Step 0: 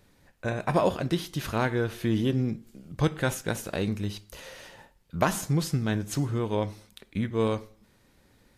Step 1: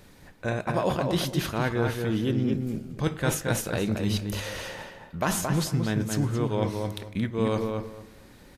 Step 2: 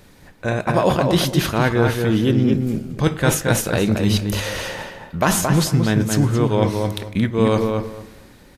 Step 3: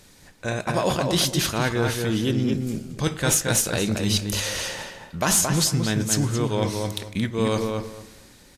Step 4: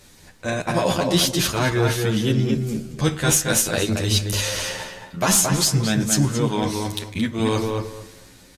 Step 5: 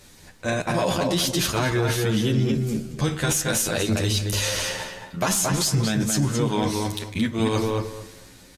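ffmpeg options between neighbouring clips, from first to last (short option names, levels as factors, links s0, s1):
-filter_complex "[0:a]bandreject=f=50:t=h:w=6,bandreject=f=100:t=h:w=6,areverse,acompressor=threshold=0.02:ratio=4,areverse,asplit=2[s0][s1];[s1]adelay=223,lowpass=f=2300:p=1,volume=0.631,asplit=2[s2][s3];[s3]adelay=223,lowpass=f=2300:p=1,volume=0.22,asplit=2[s4][s5];[s5]adelay=223,lowpass=f=2300:p=1,volume=0.22[s6];[s0][s2][s4][s6]amix=inputs=4:normalize=0,volume=2.82"
-af "dynaudnorm=f=110:g=9:m=1.78,volume=1.58"
-af "equalizer=f=7100:w=0.49:g=11,asoftclip=type=tanh:threshold=0.75,volume=0.501"
-filter_complex "[0:a]asplit=2[s0][s1];[s1]adelay=10,afreqshift=0.29[s2];[s0][s2]amix=inputs=2:normalize=1,volume=1.88"
-af "alimiter=limit=0.211:level=0:latency=1:release=32"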